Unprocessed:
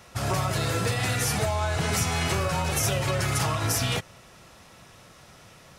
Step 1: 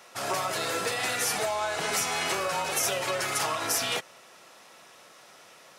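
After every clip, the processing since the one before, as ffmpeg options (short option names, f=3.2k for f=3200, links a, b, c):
-af "highpass=380"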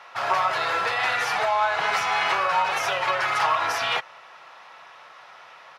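-af "firequalizer=gain_entry='entry(130,0);entry(220,-7);entry(880,12);entry(4400,1);entry(8000,-14)':delay=0.05:min_phase=1,volume=-1.5dB"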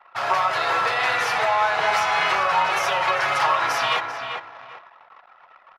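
-filter_complex "[0:a]asplit=2[a][b];[b]adelay=394,lowpass=f=2.4k:p=1,volume=-5.5dB,asplit=2[c][d];[d]adelay=394,lowpass=f=2.4k:p=1,volume=0.29,asplit=2[e][f];[f]adelay=394,lowpass=f=2.4k:p=1,volume=0.29,asplit=2[g][h];[h]adelay=394,lowpass=f=2.4k:p=1,volume=0.29[i];[a][c][e][g][i]amix=inputs=5:normalize=0,anlmdn=0.158,volume=1.5dB"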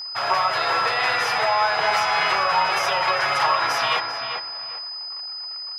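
-af "aeval=exprs='val(0)+0.0316*sin(2*PI*5000*n/s)':c=same"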